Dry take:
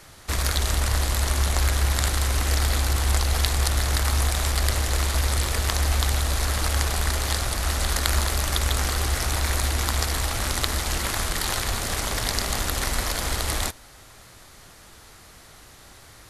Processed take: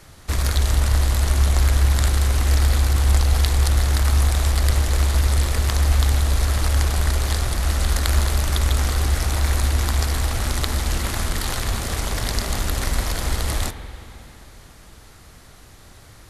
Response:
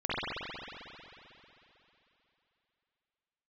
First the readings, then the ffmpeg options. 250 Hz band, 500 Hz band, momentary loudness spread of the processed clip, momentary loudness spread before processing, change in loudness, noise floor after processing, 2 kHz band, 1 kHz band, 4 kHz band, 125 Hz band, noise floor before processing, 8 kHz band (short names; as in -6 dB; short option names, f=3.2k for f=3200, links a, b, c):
+3.5 dB, +1.0 dB, 6 LU, 3 LU, +3.0 dB, -46 dBFS, -1.0 dB, -0.5 dB, -1.5 dB, +6.0 dB, -48 dBFS, -1.5 dB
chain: -filter_complex "[0:a]lowshelf=f=330:g=7,asplit=2[a][b];[1:a]atrim=start_sample=2205,adelay=37[c];[b][c]afir=irnorm=-1:irlink=0,volume=-21.5dB[d];[a][d]amix=inputs=2:normalize=0,volume=-1.5dB"